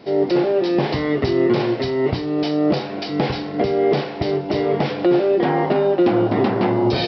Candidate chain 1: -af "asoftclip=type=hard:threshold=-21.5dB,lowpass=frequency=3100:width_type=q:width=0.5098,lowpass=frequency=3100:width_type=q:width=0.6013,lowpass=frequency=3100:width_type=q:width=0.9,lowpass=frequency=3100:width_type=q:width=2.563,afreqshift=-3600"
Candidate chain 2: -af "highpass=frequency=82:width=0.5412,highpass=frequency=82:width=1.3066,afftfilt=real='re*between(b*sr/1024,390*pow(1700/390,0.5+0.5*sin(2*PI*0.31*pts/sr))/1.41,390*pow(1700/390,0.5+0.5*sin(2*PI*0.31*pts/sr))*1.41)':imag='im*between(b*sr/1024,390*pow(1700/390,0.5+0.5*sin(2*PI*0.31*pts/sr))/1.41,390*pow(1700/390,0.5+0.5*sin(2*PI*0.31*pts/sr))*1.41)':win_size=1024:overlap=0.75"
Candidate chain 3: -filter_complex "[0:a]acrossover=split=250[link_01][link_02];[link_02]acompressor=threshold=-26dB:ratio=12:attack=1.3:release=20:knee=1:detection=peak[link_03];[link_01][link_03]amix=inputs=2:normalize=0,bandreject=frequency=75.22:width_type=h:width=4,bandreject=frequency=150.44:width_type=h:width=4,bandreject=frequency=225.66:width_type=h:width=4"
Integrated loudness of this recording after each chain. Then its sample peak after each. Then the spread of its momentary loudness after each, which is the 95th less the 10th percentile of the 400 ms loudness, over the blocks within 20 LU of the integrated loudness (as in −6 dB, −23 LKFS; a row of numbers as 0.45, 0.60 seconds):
−21.0, −24.0, −25.0 LKFS; −13.0, −8.0, −9.0 dBFS; 3, 19, 3 LU